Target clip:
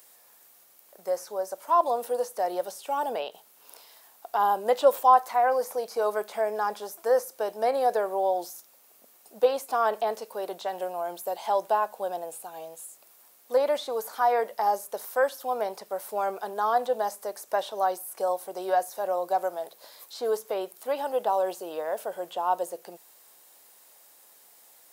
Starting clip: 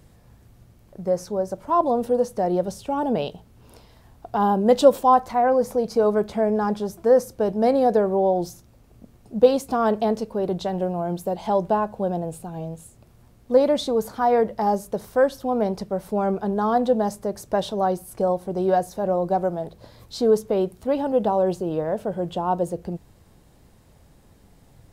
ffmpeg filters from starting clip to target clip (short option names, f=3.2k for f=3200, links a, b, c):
-filter_complex "[0:a]acrossover=split=2600[a][b];[b]acompressor=threshold=-50dB:ratio=4:attack=1:release=60[c];[a][c]amix=inputs=2:normalize=0,highpass=620,aemphasis=mode=production:type=bsi"